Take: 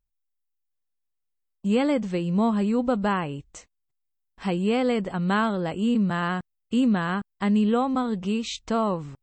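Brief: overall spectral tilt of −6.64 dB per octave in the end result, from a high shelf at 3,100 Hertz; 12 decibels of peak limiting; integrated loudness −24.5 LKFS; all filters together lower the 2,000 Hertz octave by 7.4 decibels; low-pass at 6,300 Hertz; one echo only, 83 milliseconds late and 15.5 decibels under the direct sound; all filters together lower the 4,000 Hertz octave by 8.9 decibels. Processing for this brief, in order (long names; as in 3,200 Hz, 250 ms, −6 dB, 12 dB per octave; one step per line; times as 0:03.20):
low-pass filter 6,300 Hz
parametric band 2,000 Hz −7.5 dB
high-shelf EQ 3,100 Hz −6.5 dB
parametric band 4,000 Hz −3.5 dB
brickwall limiter −23.5 dBFS
single-tap delay 83 ms −15.5 dB
level +7 dB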